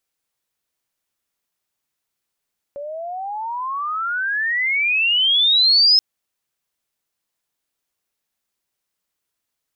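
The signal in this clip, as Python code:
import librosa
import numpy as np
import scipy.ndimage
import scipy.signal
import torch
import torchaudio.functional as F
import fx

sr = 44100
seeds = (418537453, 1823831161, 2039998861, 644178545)

y = fx.chirp(sr, length_s=3.23, from_hz=560.0, to_hz=5200.0, law='logarithmic', from_db=-27.5, to_db=-9.5)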